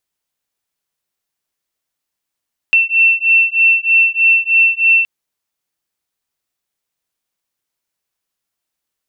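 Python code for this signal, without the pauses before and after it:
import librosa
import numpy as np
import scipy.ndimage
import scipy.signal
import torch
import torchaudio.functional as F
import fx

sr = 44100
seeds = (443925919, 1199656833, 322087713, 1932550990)

y = fx.two_tone_beats(sr, length_s=2.32, hz=2690.0, beat_hz=3.2, level_db=-12.0)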